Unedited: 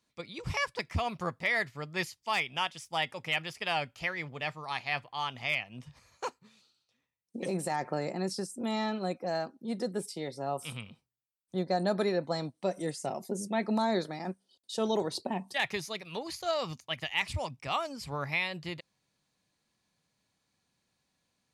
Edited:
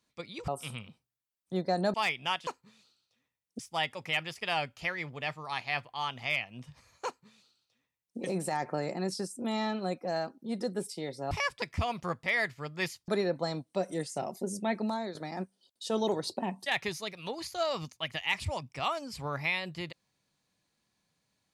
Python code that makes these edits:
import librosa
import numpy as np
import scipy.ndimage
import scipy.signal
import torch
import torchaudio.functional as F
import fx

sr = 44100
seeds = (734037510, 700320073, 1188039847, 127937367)

y = fx.edit(x, sr, fx.swap(start_s=0.48, length_s=1.77, other_s=10.5, other_length_s=1.46),
    fx.duplicate(start_s=6.25, length_s=1.12, to_s=2.78),
    fx.fade_out_to(start_s=13.56, length_s=0.47, floor_db=-12.5), tone=tone)